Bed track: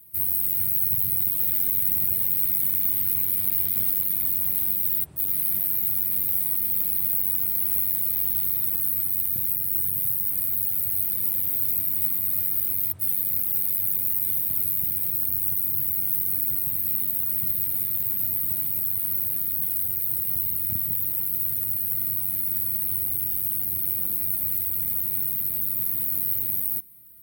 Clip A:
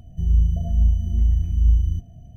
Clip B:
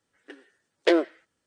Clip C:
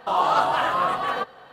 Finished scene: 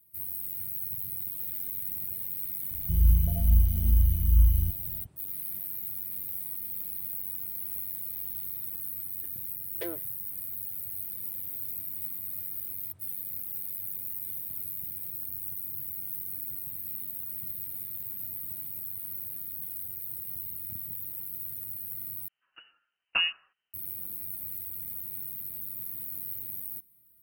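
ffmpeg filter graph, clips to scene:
ffmpeg -i bed.wav -i cue0.wav -i cue1.wav -filter_complex "[2:a]asplit=2[link_01][link_02];[0:a]volume=-12dB[link_03];[link_02]lowpass=frequency=2700:width_type=q:width=0.5098,lowpass=frequency=2700:width_type=q:width=0.6013,lowpass=frequency=2700:width_type=q:width=0.9,lowpass=frequency=2700:width_type=q:width=2.563,afreqshift=-3200[link_04];[link_03]asplit=2[link_05][link_06];[link_05]atrim=end=22.284[link_07];[link_04]atrim=end=1.46,asetpts=PTS-STARTPTS,volume=-7dB[link_08];[link_06]atrim=start=23.736[link_09];[1:a]atrim=end=2.36,asetpts=PTS-STARTPTS,volume=-3.5dB,afade=type=in:duration=0.004:curve=hsin,afade=type=out:start_time=2.356:duration=0.004:curve=hsin,adelay=2710[link_10];[link_01]atrim=end=1.46,asetpts=PTS-STARTPTS,volume=-17.5dB,afade=type=in:duration=0.004:curve=hsin,afade=type=out:start_time=1.456:duration=0.004:curve=hsin,adelay=8940[link_11];[link_07][link_08]acrossfade=duration=0.004:curve1=hsin:curve2=hsin[link_12];[link_12][link_09]acrossfade=duration=0.004:curve1=hsin:curve2=hsin[link_13];[link_13][link_10][link_11]amix=inputs=3:normalize=0" out.wav

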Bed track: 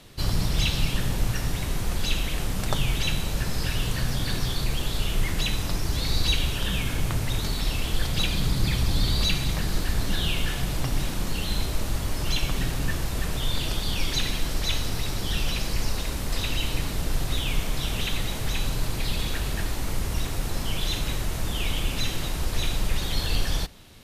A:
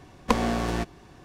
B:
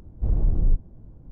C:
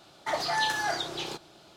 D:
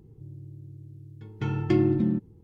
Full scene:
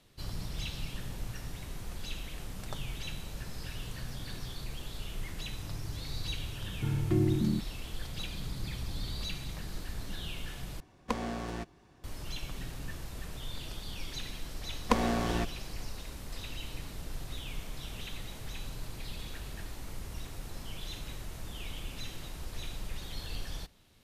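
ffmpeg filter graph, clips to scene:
ffmpeg -i bed.wav -i cue0.wav -i cue1.wav -i cue2.wav -i cue3.wav -filter_complex "[1:a]asplit=2[link_01][link_02];[0:a]volume=-14dB[link_03];[4:a]aemphasis=mode=reproduction:type=bsi[link_04];[link_03]asplit=2[link_05][link_06];[link_05]atrim=end=10.804[link_07];[link_01]atrim=end=1.24,asetpts=PTS-STARTPTS,volume=-10.5dB[link_08];[link_06]atrim=start=12.036[link_09];[link_04]atrim=end=2.43,asetpts=PTS-STARTPTS,volume=-10.5dB,afade=type=in:duration=0.004:curve=hsin,afade=type=out:start_time=2.426:duration=0.004:curve=hsin,adelay=238581S[link_10];[link_02]atrim=end=1.24,asetpts=PTS-STARTPTS,volume=-4dB,afade=type=in:duration=0.004:curve=hsin,afade=type=out:start_time=1.236:duration=0.004:curve=hsin,adelay=14610[link_11];[link_07][link_08]acrossfade=duration=0.004:curve1=hsin:curve2=hsin[link_12];[link_12][link_09]acrossfade=duration=0.004:curve1=hsin:curve2=hsin[link_13];[link_13][link_10][link_11]amix=inputs=3:normalize=0" out.wav

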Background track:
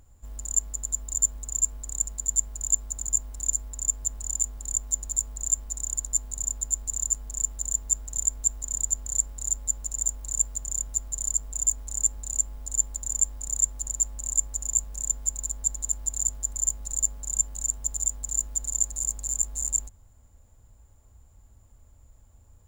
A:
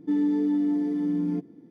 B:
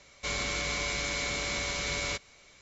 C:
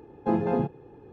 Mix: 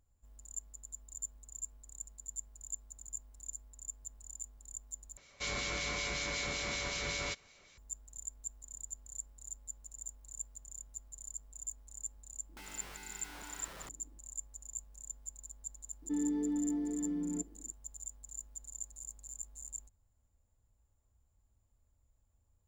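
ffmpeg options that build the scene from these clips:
ffmpeg -i bed.wav -i cue0.wav -i cue1.wav -filter_complex "[1:a]asplit=2[link_01][link_02];[0:a]volume=-18.5dB[link_03];[2:a]acrossover=split=2100[link_04][link_05];[link_04]aeval=exprs='val(0)*(1-0.5/2+0.5/2*cos(2*PI*5.3*n/s))':channel_layout=same[link_06];[link_05]aeval=exprs='val(0)*(1-0.5/2-0.5/2*cos(2*PI*5.3*n/s))':channel_layout=same[link_07];[link_06][link_07]amix=inputs=2:normalize=0[link_08];[link_01]aeval=exprs='(mod(25.1*val(0)+1,2)-1)/25.1':channel_layout=same[link_09];[link_02]highpass=210[link_10];[link_03]asplit=2[link_11][link_12];[link_11]atrim=end=5.174[link_13];[link_08]atrim=end=2.61,asetpts=PTS-STARTPTS,volume=-2.5dB[link_14];[link_12]atrim=start=7.776[link_15];[link_09]atrim=end=1.7,asetpts=PTS-STARTPTS,volume=-17.5dB,afade=type=in:duration=0.004:curve=hsin,afade=type=out:start_time=1.696:duration=0.004:curve=hsin,adelay=12490[link_16];[link_10]atrim=end=1.7,asetpts=PTS-STARTPTS,volume=-9dB,afade=type=in:duration=0.004:curve=hsin,afade=type=out:start_time=1.696:duration=0.004:curve=hsin,adelay=16020[link_17];[link_13][link_14]acrossfade=duration=0.004:curve1=hsin:curve2=hsin[link_18];[link_18][link_15]acrossfade=duration=0.004:curve1=hsin:curve2=hsin[link_19];[link_19][link_16][link_17]amix=inputs=3:normalize=0" out.wav

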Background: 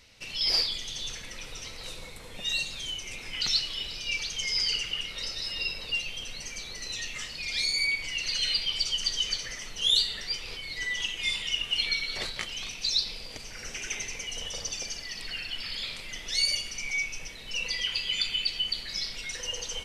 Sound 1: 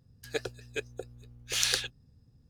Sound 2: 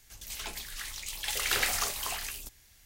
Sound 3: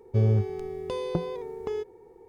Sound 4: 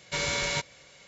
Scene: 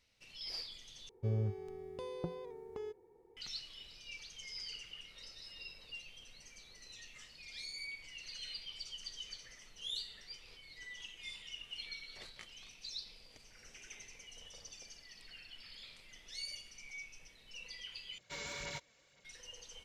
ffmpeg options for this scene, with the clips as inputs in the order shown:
ffmpeg -i bed.wav -i cue0.wav -i cue1.wav -i cue2.wav -i cue3.wav -filter_complex "[0:a]volume=-18dB[link_01];[4:a]aphaser=in_gain=1:out_gain=1:delay=4.6:decay=0.47:speed=2:type=sinusoidal[link_02];[link_01]asplit=3[link_03][link_04][link_05];[link_03]atrim=end=1.094[link_06];[3:a]atrim=end=2.28,asetpts=PTS-STARTPTS,volume=-12.5dB[link_07];[link_04]atrim=start=3.366:end=18.184[link_08];[link_02]atrim=end=1.07,asetpts=PTS-STARTPTS,volume=-16dB[link_09];[link_05]atrim=start=19.246[link_10];[link_06][link_07]acrossfade=duration=0.004:curve1=hsin:curve2=hsin[link_11];[link_11][link_08]acrossfade=duration=0.004:curve1=hsin:curve2=hsin[link_12];[link_12][link_09]acrossfade=duration=0.004:curve1=hsin:curve2=hsin[link_13];[link_13][link_10]acrossfade=duration=0.004:curve1=hsin:curve2=hsin" out.wav

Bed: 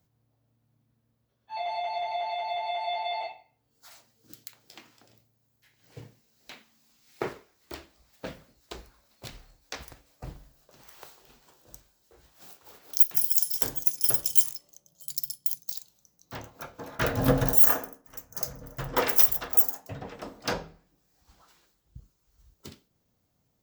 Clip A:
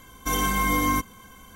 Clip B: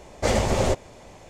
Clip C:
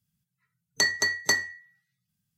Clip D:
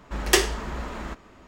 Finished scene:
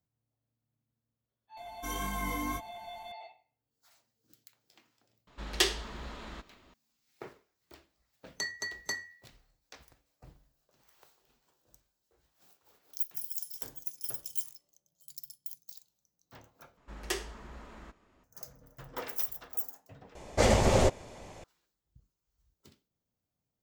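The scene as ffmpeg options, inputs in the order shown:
ffmpeg -i bed.wav -i cue0.wav -i cue1.wav -i cue2.wav -i cue3.wav -filter_complex "[4:a]asplit=2[link_01][link_02];[0:a]volume=-14dB[link_03];[1:a]flanger=delay=19:depth=4.9:speed=1.7[link_04];[link_01]equalizer=frequency=3800:width=1.4:gain=9.5[link_05];[link_03]asplit=3[link_06][link_07][link_08];[link_06]atrim=end=16.774[link_09];[link_02]atrim=end=1.47,asetpts=PTS-STARTPTS,volume=-15.5dB[link_10];[link_07]atrim=start=18.236:end=20.154[link_11];[2:a]atrim=end=1.29,asetpts=PTS-STARTPTS,volume=-2dB[link_12];[link_08]atrim=start=21.436[link_13];[link_04]atrim=end=1.55,asetpts=PTS-STARTPTS,volume=-9.5dB,afade=type=in:duration=0.004:curve=hsin,afade=type=out:start_time=1.546:duration=0.004:curve=hsin,adelay=1570[link_14];[link_05]atrim=end=1.47,asetpts=PTS-STARTPTS,volume=-11dB,afade=type=in:duration=0.004:curve=hsin,afade=type=out:start_time=1.466:duration=0.004:curve=hsin,adelay=5270[link_15];[3:a]atrim=end=2.37,asetpts=PTS-STARTPTS,volume=-12.5dB,afade=type=in:duration=0.004:curve=hsin,afade=type=out:start_time=2.366:duration=0.004:curve=hsin,adelay=7600[link_16];[link_09][link_10]acrossfade=duration=0.004:curve1=hsin:curve2=hsin[link_17];[link_17][link_11]acrossfade=duration=0.004:curve1=hsin:curve2=hsin[link_18];[link_18][link_12]acrossfade=duration=0.004:curve1=hsin:curve2=hsin[link_19];[link_19][link_13]acrossfade=duration=0.004:curve1=hsin:curve2=hsin[link_20];[link_20][link_14][link_15][link_16]amix=inputs=4:normalize=0" out.wav

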